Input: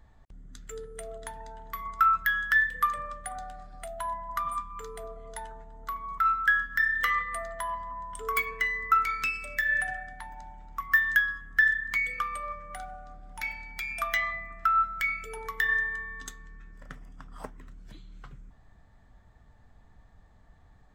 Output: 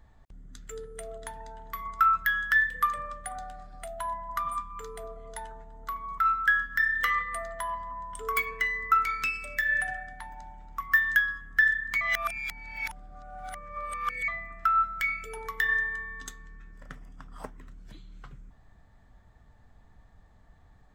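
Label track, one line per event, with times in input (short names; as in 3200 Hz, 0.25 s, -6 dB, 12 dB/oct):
12.010000	14.280000	reverse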